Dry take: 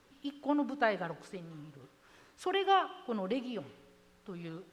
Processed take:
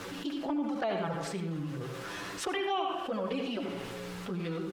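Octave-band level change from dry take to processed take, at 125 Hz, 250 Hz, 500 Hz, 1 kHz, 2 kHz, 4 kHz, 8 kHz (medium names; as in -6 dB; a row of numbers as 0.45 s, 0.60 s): +9.5 dB, +3.0 dB, +1.5 dB, -2.0 dB, -0.5 dB, +2.5 dB, +13.0 dB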